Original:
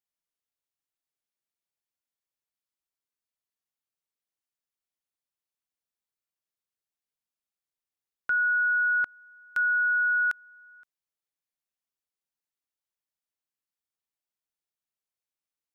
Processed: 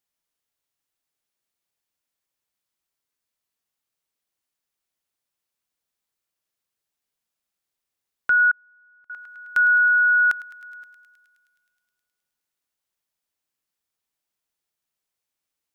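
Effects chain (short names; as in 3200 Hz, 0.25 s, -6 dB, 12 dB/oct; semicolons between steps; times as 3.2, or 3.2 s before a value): thinning echo 0.105 s, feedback 84%, high-pass 1100 Hz, level -16 dB; 8.51–9.1 flipped gate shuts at -27 dBFS, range -39 dB; gain +7.5 dB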